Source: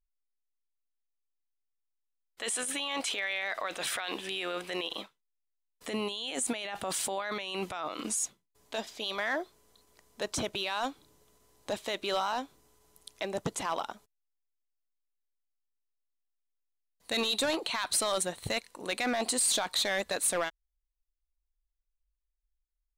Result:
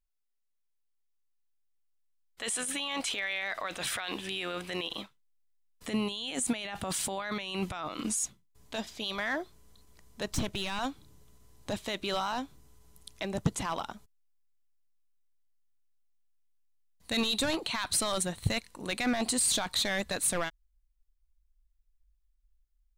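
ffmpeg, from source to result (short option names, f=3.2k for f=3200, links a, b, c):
-filter_complex "[0:a]asettb=1/sr,asplit=3[a][b][c];[a]atrim=end=10.324[d];[b]atrim=start=10.32:end=10.79,asetpts=PTS-STARTPTS,afade=t=in:d=0.004:c=qsin,afade=t=out:st=0.466:d=0.004:c=qsin,aeval=exprs='clip(val(0),-1,0.0188)':c=same[e];[c]atrim=start=10.786[f];[d][e]acrossfade=d=0.004:c1=hsin:c2=qsin[g];[g][f]acrossfade=d=0.004:c1=qsin:c2=hsin,asubboost=boost=4:cutoff=210"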